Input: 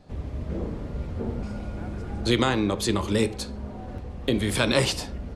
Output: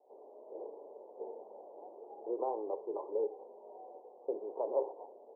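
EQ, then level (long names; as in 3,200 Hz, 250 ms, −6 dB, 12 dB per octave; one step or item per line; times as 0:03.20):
elliptic high-pass filter 410 Hz, stop band 70 dB
Butterworth low-pass 940 Hz 72 dB per octave
−6.5 dB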